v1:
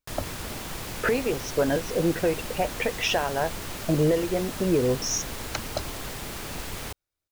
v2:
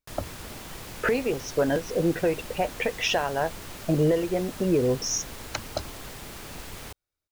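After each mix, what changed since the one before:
background -5.0 dB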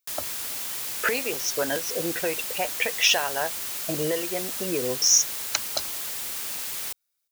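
master: add tilt EQ +4 dB/octave

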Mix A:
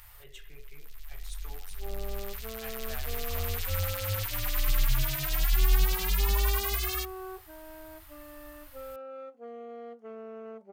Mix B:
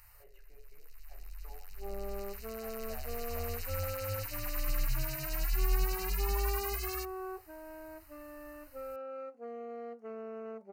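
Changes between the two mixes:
speech: add band-pass filter 640 Hz, Q 1.9; first sound -6.5 dB; master: add Butterworth band-stop 3.4 kHz, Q 3.4

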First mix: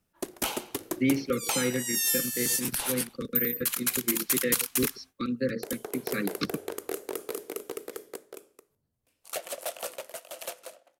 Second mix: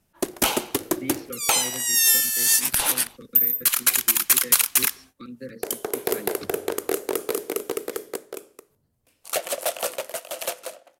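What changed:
speech -9.0 dB; background +9.0 dB

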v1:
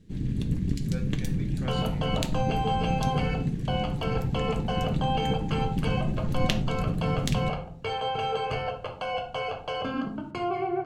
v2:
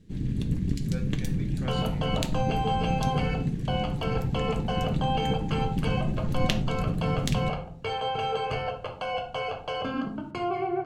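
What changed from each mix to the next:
no change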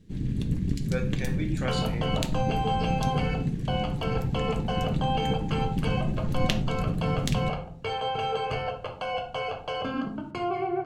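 speech +9.5 dB

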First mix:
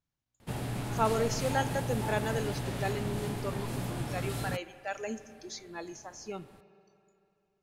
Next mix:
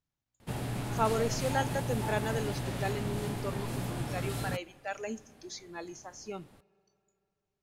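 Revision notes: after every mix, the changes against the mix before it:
speech: send -10.5 dB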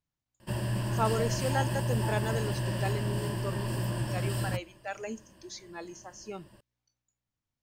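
background: add rippled EQ curve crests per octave 1.3, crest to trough 13 dB; reverb: off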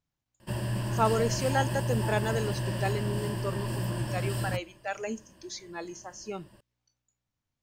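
speech +3.5 dB

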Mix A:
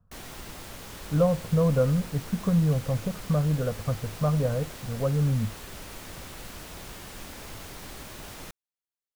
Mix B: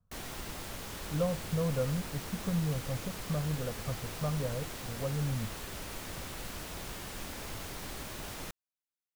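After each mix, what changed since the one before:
speech -9.0 dB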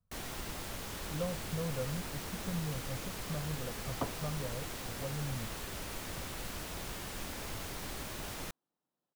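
speech -6.0 dB; second sound: unmuted

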